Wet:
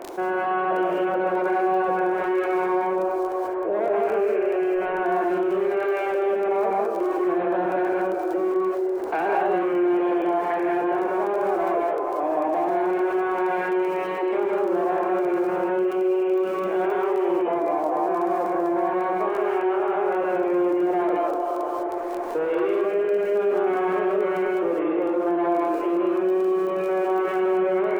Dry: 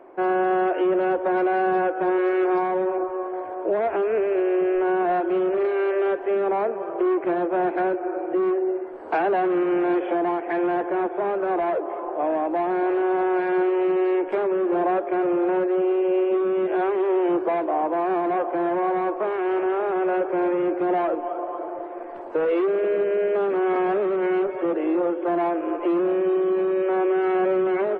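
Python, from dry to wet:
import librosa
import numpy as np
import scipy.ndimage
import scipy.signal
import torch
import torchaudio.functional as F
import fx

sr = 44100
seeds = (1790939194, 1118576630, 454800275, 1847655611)

y = fx.high_shelf(x, sr, hz=2600.0, db=-11.0, at=(17.42, 18.77))
y = fx.dmg_crackle(y, sr, seeds[0], per_s=14.0, level_db=-29.0)
y = fx.rev_gated(y, sr, seeds[1], gate_ms=230, shape='rising', drr_db=-2.5)
y = fx.env_flatten(y, sr, amount_pct=50)
y = y * librosa.db_to_amplitude(-7.0)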